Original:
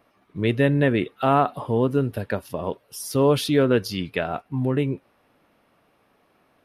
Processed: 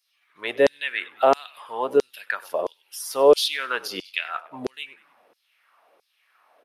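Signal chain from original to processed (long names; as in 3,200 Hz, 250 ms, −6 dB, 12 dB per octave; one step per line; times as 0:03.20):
echo with shifted repeats 97 ms, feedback 47%, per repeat −52 Hz, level −19.5 dB
auto-filter high-pass saw down 1.5 Hz 410–5,500 Hz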